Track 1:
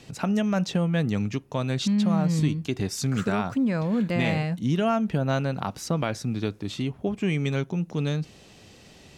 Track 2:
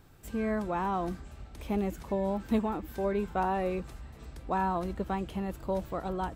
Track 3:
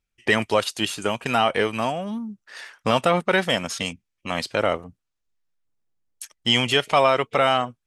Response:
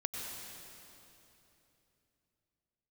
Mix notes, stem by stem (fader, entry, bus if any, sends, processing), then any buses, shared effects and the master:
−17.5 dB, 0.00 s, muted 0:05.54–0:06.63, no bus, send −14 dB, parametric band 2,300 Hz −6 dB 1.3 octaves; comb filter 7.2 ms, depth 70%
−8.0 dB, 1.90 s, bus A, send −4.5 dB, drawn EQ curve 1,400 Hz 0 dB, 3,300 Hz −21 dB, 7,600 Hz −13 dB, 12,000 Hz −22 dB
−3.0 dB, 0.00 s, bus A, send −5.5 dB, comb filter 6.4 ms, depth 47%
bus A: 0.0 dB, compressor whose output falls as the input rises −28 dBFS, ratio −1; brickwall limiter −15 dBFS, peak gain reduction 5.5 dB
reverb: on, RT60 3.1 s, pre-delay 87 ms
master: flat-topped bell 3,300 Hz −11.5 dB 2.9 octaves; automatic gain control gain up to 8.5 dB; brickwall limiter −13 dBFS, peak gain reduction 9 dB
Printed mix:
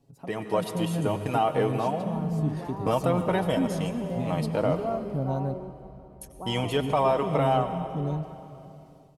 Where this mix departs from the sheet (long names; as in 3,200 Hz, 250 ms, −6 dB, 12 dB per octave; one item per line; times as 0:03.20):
stem 2 −8.0 dB → −20.0 dB
stem 3 −3.0 dB → −15.0 dB